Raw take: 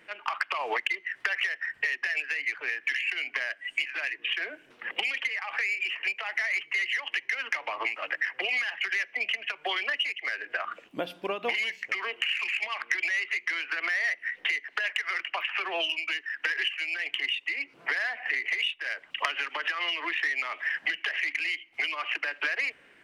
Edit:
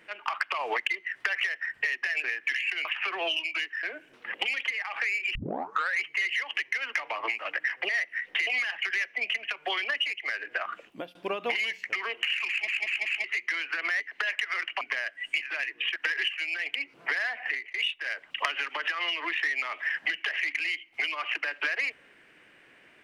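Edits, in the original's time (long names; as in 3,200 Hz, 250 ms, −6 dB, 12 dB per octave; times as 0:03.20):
0:02.24–0:02.64: remove
0:03.25–0:04.40: swap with 0:15.38–0:16.36
0:05.92: tape start 0.65 s
0:10.85–0:11.14: fade out, to −22.5 dB
0:12.47: stutter in place 0.19 s, 4 plays
0:13.99–0:14.57: move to 0:08.46
0:17.15–0:17.55: remove
0:18.27–0:18.54: fade out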